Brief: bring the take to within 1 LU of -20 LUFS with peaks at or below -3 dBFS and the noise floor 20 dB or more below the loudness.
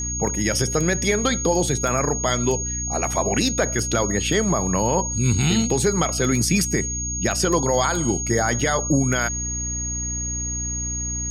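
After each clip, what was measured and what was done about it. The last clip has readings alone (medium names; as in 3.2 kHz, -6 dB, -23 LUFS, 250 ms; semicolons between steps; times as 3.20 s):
hum 60 Hz; highest harmonic 300 Hz; hum level -28 dBFS; steady tone 6.6 kHz; tone level -26 dBFS; loudness -21.0 LUFS; peak level -8.0 dBFS; loudness target -20.0 LUFS
-> hum notches 60/120/180/240/300 Hz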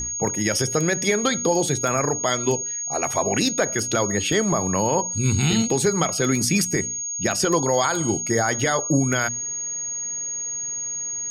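hum not found; steady tone 6.6 kHz; tone level -26 dBFS
-> band-stop 6.6 kHz, Q 30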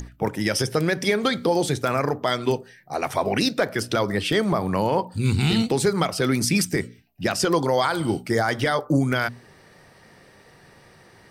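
steady tone not found; loudness -23.0 LUFS; peak level -9.0 dBFS; loudness target -20.0 LUFS
-> trim +3 dB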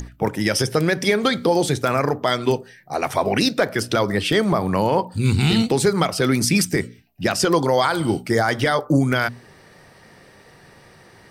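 loudness -20.0 LUFS; peak level -6.0 dBFS; noise floor -50 dBFS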